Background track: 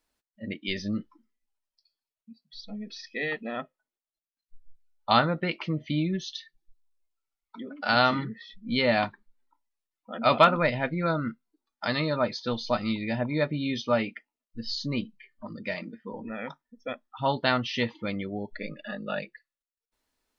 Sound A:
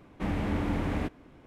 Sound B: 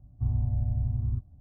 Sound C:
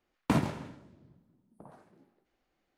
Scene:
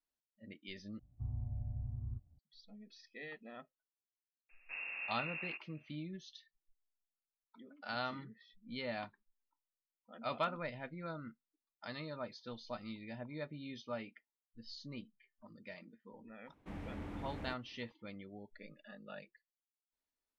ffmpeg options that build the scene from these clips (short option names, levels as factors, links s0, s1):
-filter_complex "[1:a]asplit=2[s0][s1];[0:a]volume=0.133[s2];[s0]lowpass=f=2400:t=q:w=0.5098,lowpass=f=2400:t=q:w=0.6013,lowpass=f=2400:t=q:w=0.9,lowpass=f=2400:t=q:w=2.563,afreqshift=-2800[s3];[s2]asplit=2[s4][s5];[s4]atrim=end=0.994[s6];[2:a]atrim=end=1.4,asetpts=PTS-STARTPTS,volume=0.211[s7];[s5]atrim=start=2.386[s8];[s3]atrim=end=1.46,asetpts=PTS-STARTPTS,volume=0.188,afade=t=in:d=0.004:c=hsin,afade=t=out:st=1.456:d=0.004:c=hsin,adelay=198009S[s9];[s1]atrim=end=1.46,asetpts=PTS-STARTPTS,volume=0.168,afade=t=in:d=0.004:c=hsin,afade=t=out:st=1.456:d=0.004:c=hsin,adelay=16460[s10];[s6][s7]acrossfade=d=0.004:c1=hsin:c2=hsin[s11];[s11][s8]acrossfade=d=0.004:c1=hsin:c2=hsin[s12];[s12][s9][s10]amix=inputs=3:normalize=0"